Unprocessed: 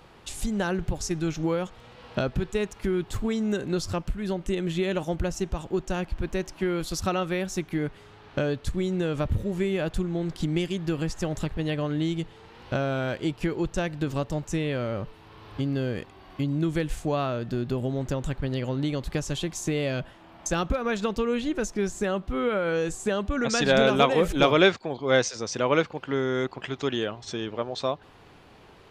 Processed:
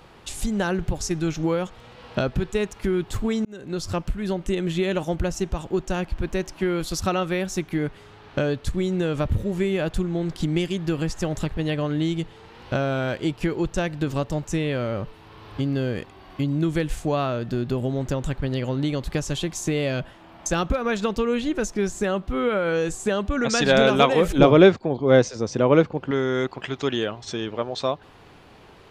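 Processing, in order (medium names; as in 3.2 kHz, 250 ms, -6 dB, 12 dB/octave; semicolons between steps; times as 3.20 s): 3.45–3.96 s: fade in; 24.38–26.11 s: tilt shelf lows +7 dB, about 830 Hz; trim +3 dB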